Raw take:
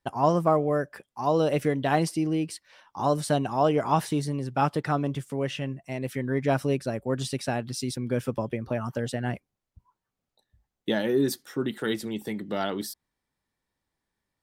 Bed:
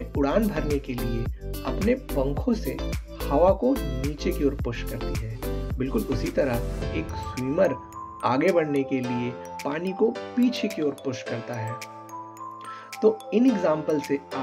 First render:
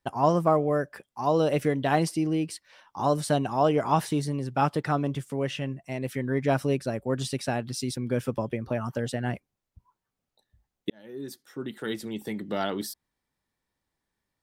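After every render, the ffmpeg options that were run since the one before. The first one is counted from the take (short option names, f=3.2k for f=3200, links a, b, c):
-filter_complex "[0:a]asplit=2[a][b];[a]atrim=end=10.9,asetpts=PTS-STARTPTS,afade=t=out:st=10.896:d=0.004:c=hsin[c];[b]atrim=start=10.9,asetpts=PTS-STARTPTS,afade=t=in:d=1.55[d];[c][d]concat=n=2:v=0:a=1"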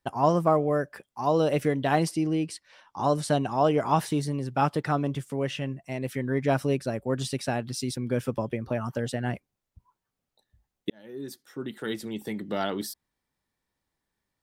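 -filter_complex "[0:a]asettb=1/sr,asplit=3[a][b][c];[a]atrim=end=2.114[d];[b]atrim=start=2.11:end=3.66,asetpts=PTS-STARTPTS,afade=t=in:d=0.004:c=qsin,afade=t=out:st=1.546:d=0.004:c=qsin,lowpass=11k[e];[c]atrim=start=3.656[f];[d][e]acrossfade=d=0.004:c1=hsin:c2=qsin[g];[g][f]acrossfade=d=0.004:c1=qsin:c2=hsin"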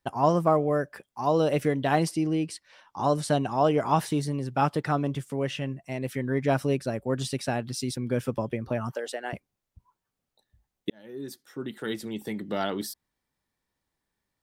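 -filter_complex "[0:a]asettb=1/sr,asplit=3[a][b][c];[a]atrim=end=8.934[d];[b]atrim=start=8.93:end=9.33,asetpts=PTS-STARTPTS,afade=t=in:d=0.004:c=qsin,afade=t=out:st=0.396:d=0.004:c=qsin,highpass=f=390:w=0.5412,highpass=f=390:w=1.3066[e];[c]atrim=start=9.326[f];[d][e]acrossfade=d=0.004:c1=hsin:c2=qsin[g];[g][f]acrossfade=d=0.004:c1=qsin:c2=hsin"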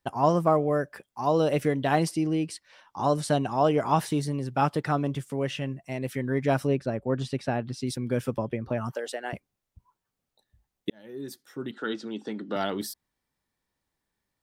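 -filter_complex "[0:a]asettb=1/sr,asplit=3[a][b][c];[a]atrim=end=6.674[d];[b]atrim=start=6.67:end=7.87,asetpts=PTS-STARTPTS,afade=t=in:d=0.004:c=qsin,afade=t=out:st=1.196:d=0.004:c=qsin,aemphasis=mode=reproduction:type=75fm[e];[c]atrim=start=7.866[f];[d][e]acrossfade=d=0.004:c1=hsin:c2=qsin[g];[g][f]acrossfade=d=0.004:c1=qsin:c2=hsin,asettb=1/sr,asplit=3[h][i][j];[h]atrim=end=8.374[k];[i]atrim=start=8.37:end=8.78,asetpts=PTS-STARTPTS,afade=t=in:d=0.004:c=qsin,afade=t=out:st=0.406:d=0.004:c=qsin,lowpass=f=3.7k:p=1[l];[j]atrim=start=8.776[m];[k][l]acrossfade=d=0.004:c1=hsin:c2=qsin[n];[n][m]acrossfade=d=0.004:c1=qsin:c2=hsin,asettb=1/sr,asplit=3[o][p][q];[o]atrim=end=11.714[r];[p]atrim=start=11.71:end=12.56,asetpts=PTS-STARTPTS,afade=t=in:d=0.004:c=qsin,afade=t=out:st=0.846:d=0.004:c=qsin,highpass=240,equalizer=f=260:t=q:w=4:g=7,equalizer=f=1.4k:t=q:w=4:g=9,equalizer=f=2.1k:t=q:w=4:g=-9,lowpass=f=6.1k:w=0.5412,lowpass=f=6.1k:w=1.3066[s];[q]atrim=start=12.556[t];[r][s]acrossfade=d=0.004:c1=hsin:c2=qsin[u];[u][t]acrossfade=d=0.004:c1=qsin:c2=hsin"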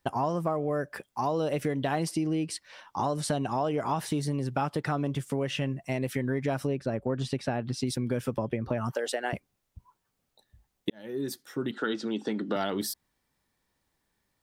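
-filter_complex "[0:a]asplit=2[a][b];[b]alimiter=limit=-19.5dB:level=0:latency=1,volume=-1.5dB[c];[a][c]amix=inputs=2:normalize=0,acompressor=threshold=-26dB:ratio=5"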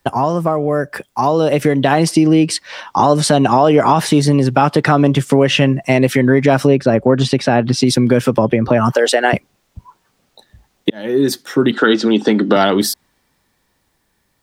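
-filter_complex "[0:a]acrossover=split=140|7100[a][b][c];[b]dynaudnorm=f=280:g=13:m=6.5dB[d];[a][d][c]amix=inputs=3:normalize=0,alimiter=level_in=12.5dB:limit=-1dB:release=50:level=0:latency=1"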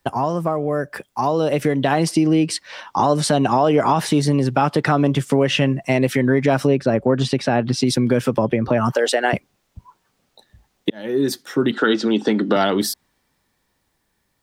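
-af "volume=-5dB"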